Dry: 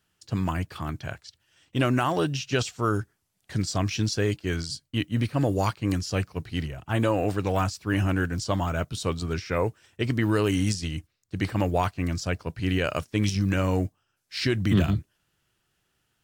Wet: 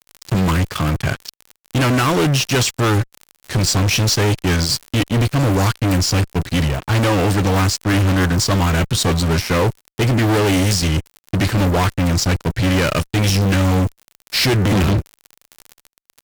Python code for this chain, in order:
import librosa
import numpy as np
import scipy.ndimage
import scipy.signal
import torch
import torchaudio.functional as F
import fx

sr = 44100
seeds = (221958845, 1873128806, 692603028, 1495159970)

y = fx.dmg_crackle(x, sr, seeds[0], per_s=87.0, level_db=-40.0)
y = fx.dynamic_eq(y, sr, hz=730.0, q=1.5, threshold_db=-42.0, ratio=4.0, max_db=-6)
y = fx.fuzz(y, sr, gain_db=34.0, gate_db=-42.0)